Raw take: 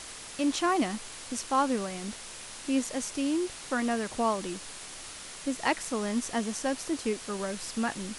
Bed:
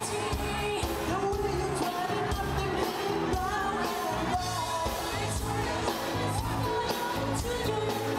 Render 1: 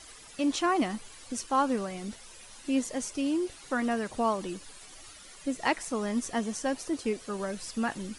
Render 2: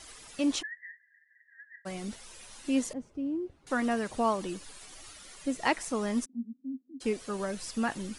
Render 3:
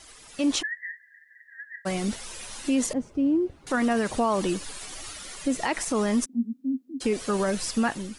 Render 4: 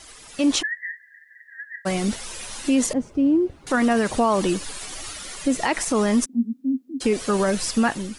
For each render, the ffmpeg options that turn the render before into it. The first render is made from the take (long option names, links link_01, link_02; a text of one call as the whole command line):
ffmpeg -i in.wav -af "afftdn=noise_reduction=12:noise_floor=-44" out.wav
ffmpeg -i in.wav -filter_complex "[0:a]asplit=3[link_01][link_02][link_03];[link_01]afade=type=out:start_time=0.61:duration=0.02[link_04];[link_02]asuperpass=centerf=1800:order=12:qfactor=4.9,afade=type=in:start_time=0.61:duration=0.02,afade=type=out:start_time=1.85:duration=0.02[link_05];[link_03]afade=type=in:start_time=1.85:duration=0.02[link_06];[link_04][link_05][link_06]amix=inputs=3:normalize=0,asettb=1/sr,asplit=3[link_07][link_08][link_09];[link_07]atrim=end=2.934[link_10];[link_08]atrim=start=2.93:end=3.67,asetpts=PTS-STARTPTS,afade=type=in:duration=0.004:curve=qsin,afade=type=out:start_time=0.736:duration=0.004:curve=qsin,bandpass=frequency=110:width_type=q:width=0.51[link_11];[link_09]atrim=start=3.666[link_12];[link_10][link_11]acrossfade=duration=0.004:curve1=hsin:curve2=qsin[link_13];[link_13][link_12]acrossfade=duration=0.004:curve1=qsin:curve2=hsin,asplit=3[link_14][link_15][link_16];[link_14]afade=type=out:start_time=6.24:duration=0.02[link_17];[link_15]asuperpass=centerf=250:order=4:qfactor=6.7,afade=type=in:start_time=6.24:duration=0.02,afade=type=out:start_time=7:duration=0.02[link_18];[link_16]afade=type=in:start_time=7:duration=0.02[link_19];[link_17][link_18][link_19]amix=inputs=3:normalize=0" out.wav
ffmpeg -i in.wav -af "dynaudnorm=framelen=150:gausssize=7:maxgain=10dB,alimiter=limit=-16dB:level=0:latency=1:release=49" out.wav
ffmpeg -i in.wav -af "volume=4.5dB" out.wav